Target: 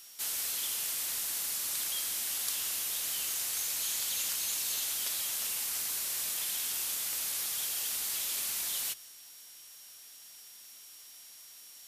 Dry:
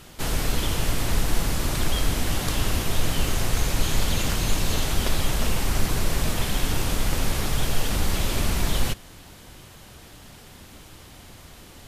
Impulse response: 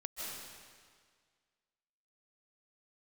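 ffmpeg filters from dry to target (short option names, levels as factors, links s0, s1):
-filter_complex "[0:a]aderivative,aeval=exprs='val(0)+0.00158*sin(2*PI*5600*n/s)':c=same,bandreject=f=60:t=h:w=6,bandreject=f=120:t=h:w=6,asplit=2[s0][s1];[1:a]atrim=start_sample=2205,afade=t=out:st=0.23:d=0.01,atrim=end_sample=10584[s2];[s1][s2]afir=irnorm=-1:irlink=0,volume=0.178[s3];[s0][s3]amix=inputs=2:normalize=0,volume=0.841"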